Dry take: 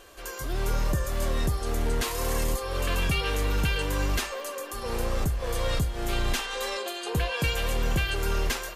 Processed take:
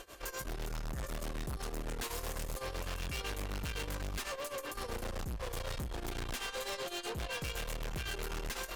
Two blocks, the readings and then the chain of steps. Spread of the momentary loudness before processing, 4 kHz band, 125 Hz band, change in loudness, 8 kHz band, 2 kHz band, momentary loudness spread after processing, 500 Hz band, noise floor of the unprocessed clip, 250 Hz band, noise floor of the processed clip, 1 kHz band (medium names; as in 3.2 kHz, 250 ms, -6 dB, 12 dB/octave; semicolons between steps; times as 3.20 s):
5 LU, -9.5 dB, -13.0 dB, -11.0 dB, -8.5 dB, -10.0 dB, 3 LU, -10.5 dB, -38 dBFS, -11.0 dB, -46 dBFS, -10.0 dB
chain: tremolo 7.9 Hz, depth 90%; valve stage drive 43 dB, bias 0.7; trim +6.5 dB